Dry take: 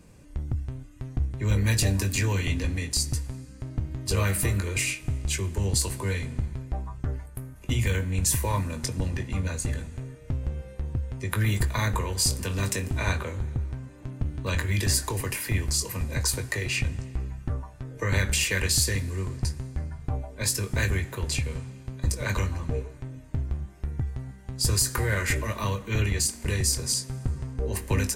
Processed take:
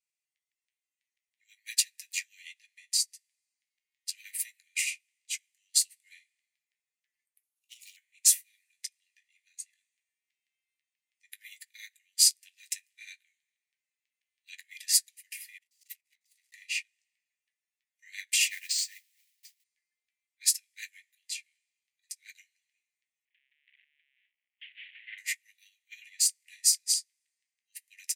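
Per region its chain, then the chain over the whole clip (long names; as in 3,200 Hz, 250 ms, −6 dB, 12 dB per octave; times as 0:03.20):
0:07.43–0:07.97: lower of the sound and its delayed copy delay 0.72 ms + tilt shelving filter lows −4.5 dB, about 1,200 Hz + phaser with its sweep stopped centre 670 Hz, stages 4
0:15.58–0:16.54: lower of the sound and its delayed copy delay 1.5 ms + compressor whose output falls as the input rises −34 dBFS, ratio −0.5 + saturating transformer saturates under 190 Hz
0:18.48–0:19.64: Butterworth low-pass 8,700 Hz 96 dB per octave + high-shelf EQ 4,900 Hz −4.5 dB + noise that follows the level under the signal 15 dB
0:23.25–0:25.18: linear delta modulator 16 kbit/s, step −21.5 dBFS + high-pass filter 44 Hz 6 dB per octave + noise gate with hold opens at −21 dBFS, closes at −27 dBFS
whole clip: Butterworth high-pass 1,900 Hz 72 dB per octave; expander for the loud parts 2.5 to 1, over −44 dBFS; level +5.5 dB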